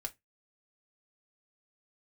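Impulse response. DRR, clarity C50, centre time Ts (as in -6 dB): 3.0 dB, 23.5 dB, 4 ms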